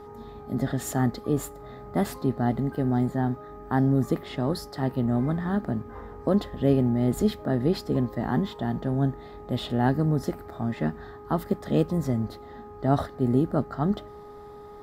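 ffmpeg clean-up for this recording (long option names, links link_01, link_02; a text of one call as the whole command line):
ffmpeg -i in.wav -af "bandreject=frequency=414.7:width_type=h:width=4,bandreject=frequency=829.4:width_type=h:width=4,bandreject=frequency=1244.1:width_type=h:width=4" out.wav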